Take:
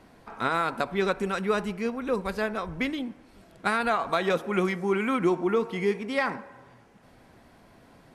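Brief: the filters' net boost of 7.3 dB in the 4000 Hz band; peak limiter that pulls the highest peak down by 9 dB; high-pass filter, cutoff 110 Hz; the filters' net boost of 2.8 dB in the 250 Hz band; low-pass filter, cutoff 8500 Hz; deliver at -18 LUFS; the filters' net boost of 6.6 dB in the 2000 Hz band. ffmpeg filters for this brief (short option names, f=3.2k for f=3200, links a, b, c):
-af "highpass=110,lowpass=8.5k,equalizer=f=250:t=o:g=4,equalizer=f=2k:t=o:g=7,equalizer=f=4k:t=o:g=6.5,volume=8.5dB,alimiter=limit=-6dB:level=0:latency=1"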